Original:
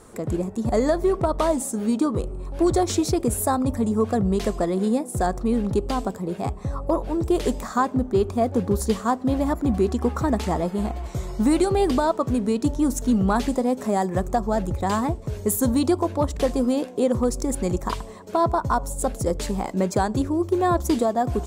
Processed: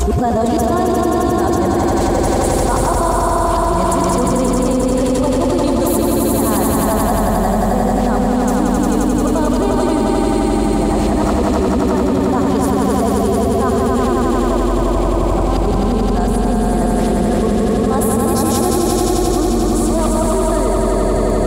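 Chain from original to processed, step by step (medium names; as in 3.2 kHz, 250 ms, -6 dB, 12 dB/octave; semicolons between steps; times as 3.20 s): reverse the whole clip; echo with a slow build-up 88 ms, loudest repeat 5, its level -3.5 dB; level flattener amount 100%; trim -3.5 dB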